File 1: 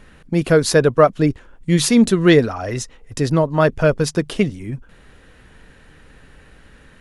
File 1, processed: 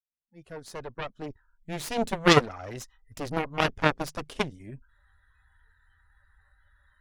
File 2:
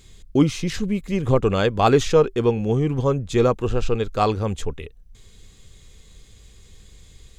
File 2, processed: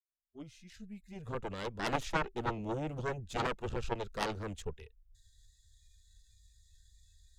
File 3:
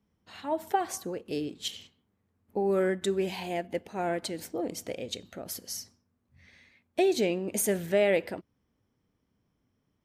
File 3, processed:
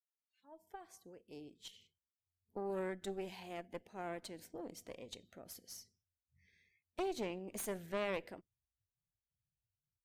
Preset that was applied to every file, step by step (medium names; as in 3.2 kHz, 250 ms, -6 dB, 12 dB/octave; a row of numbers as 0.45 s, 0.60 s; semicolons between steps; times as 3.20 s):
fade-in on the opening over 2.52 s; spectral noise reduction 25 dB; Chebyshev shaper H 2 -20 dB, 3 -8 dB, 4 -30 dB, 8 -31 dB, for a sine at -2.5 dBFS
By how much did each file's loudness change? -10.5 LU, -17.0 LU, -14.0 LU